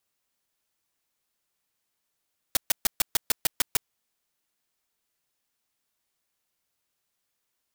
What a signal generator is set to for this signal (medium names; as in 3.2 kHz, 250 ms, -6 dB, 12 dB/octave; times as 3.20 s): noise bursts white, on 0.02 s, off 0.13 s, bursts 9, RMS -21 dBFS